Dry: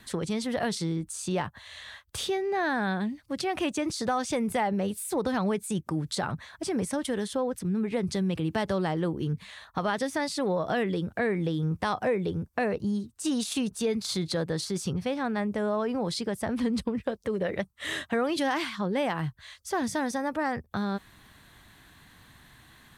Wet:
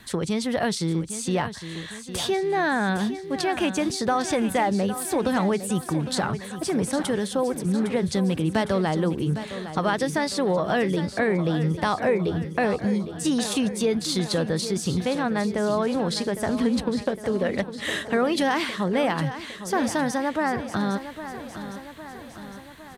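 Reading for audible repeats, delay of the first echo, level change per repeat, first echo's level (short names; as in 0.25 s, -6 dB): 5, 0.808 s, -4.5 dB, -11.5 dB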